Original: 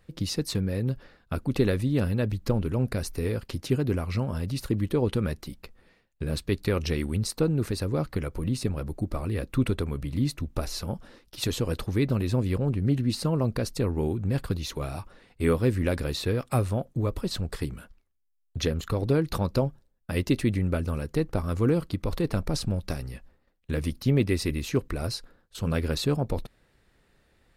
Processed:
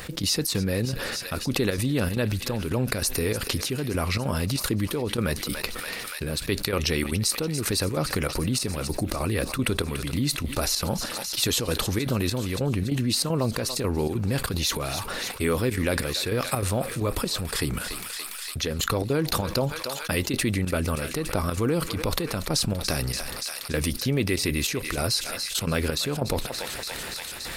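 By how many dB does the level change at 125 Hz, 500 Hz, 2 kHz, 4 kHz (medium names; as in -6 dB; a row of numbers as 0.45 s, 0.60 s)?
-1.0 dB, +1.0 dB, +8.0 dB, +9.5 dB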